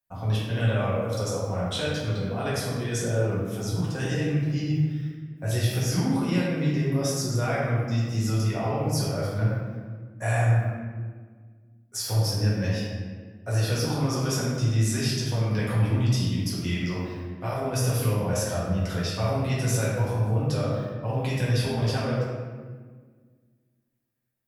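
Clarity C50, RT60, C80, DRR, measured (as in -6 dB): -2.0 dB, 1.6 s, 1.0 dB, -8.0 dB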